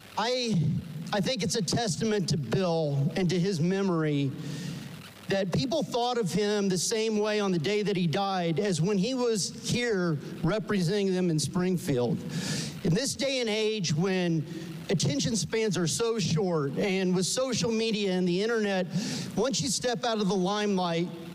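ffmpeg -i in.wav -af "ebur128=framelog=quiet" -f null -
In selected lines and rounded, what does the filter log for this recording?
Integrated loudness:
  I:         -28.0 LUFS
  Threshold: -38.1 LUFS
Loudness range:
  LRA:         1.7 LU
  Threshold: -48.1 LUFS
  LRA low:   -29.0 LUFS
  LRA high:  -27.3 LUFS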